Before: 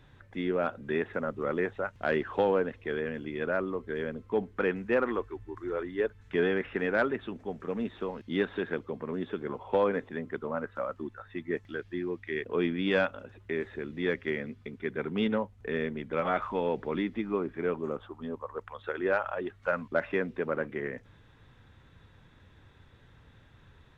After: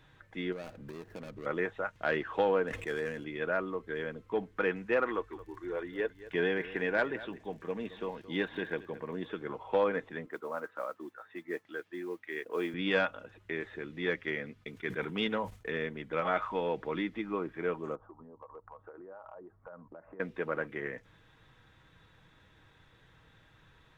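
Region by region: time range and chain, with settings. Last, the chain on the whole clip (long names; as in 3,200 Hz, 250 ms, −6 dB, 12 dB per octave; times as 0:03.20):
0:00.52–0:01.46: running median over 41 samples + low-shelf EQ 160 Hz +7 dB + downward compressor, threshold −35 dBFS
0:02.67–0:03.24: running median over 9 samples + level that may fall only so fast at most 44 dB per second
0:05.30–0:09.26: notch filter 1,300 Hz, Q 6.9 + surface crackle 37 per second −53 dBFS + single-tap delay 221 ms −16.5 dB
0:10.26–0:12.74: high-pass filter 280 Hz + noise that follows the level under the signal 26 dB + high-shelf EQ 2,600 Hz −9 dB
0:14.64–0:15.71: noise gate −49 dBFS, range −11 dB + high-shelf EQ 3,800 Hz +8 dB + level that may fall only so fast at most 120 dB per second
0:17.95–0:20.20: low-pass filter 1,100 Hz 24 dB per octave + downward compressor 12 to 1, threshold −42 dBFS
whole clip: low-shelf EQ 490 Hz −6.5 dB; comb filter 6.3 ms, depth 32%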